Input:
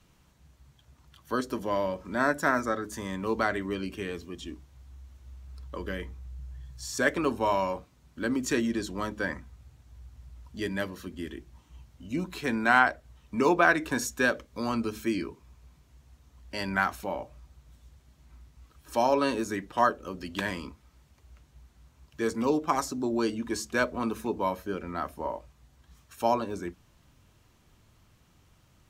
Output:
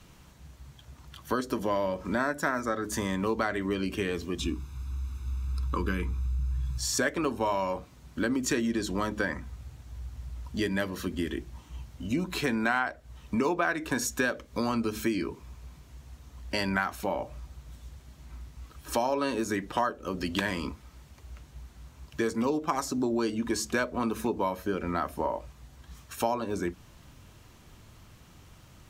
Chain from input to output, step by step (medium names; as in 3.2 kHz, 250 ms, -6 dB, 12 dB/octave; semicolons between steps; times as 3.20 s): 4.39–6.78 s: comb 0.8 ms, depth 95%; compression 4:1, threshold -35 dBFS, peak gain reduction 16.5 dB; trim +8.5 dB